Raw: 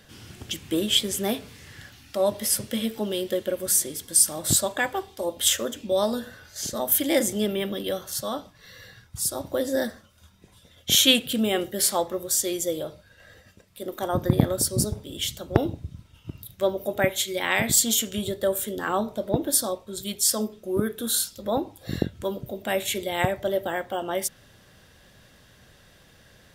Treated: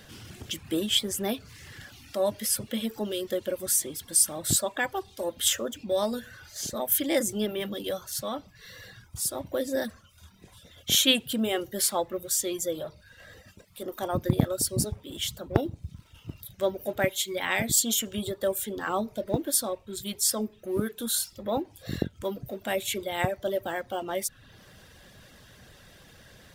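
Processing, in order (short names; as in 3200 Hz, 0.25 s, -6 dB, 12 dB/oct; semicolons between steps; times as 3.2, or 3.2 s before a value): G.711 law mismatch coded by mu; reverb removal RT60 0.55 s; gain -3.5 dB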